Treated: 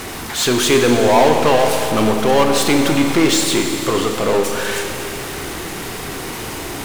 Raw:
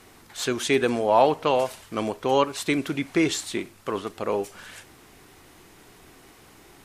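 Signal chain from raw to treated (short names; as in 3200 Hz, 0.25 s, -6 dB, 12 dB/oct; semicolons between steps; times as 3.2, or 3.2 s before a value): power-law curve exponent 0.5; Schroeder reverb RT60 3.4 s, combs from 25 ms, DRR 3.5 dB; gain +1 dB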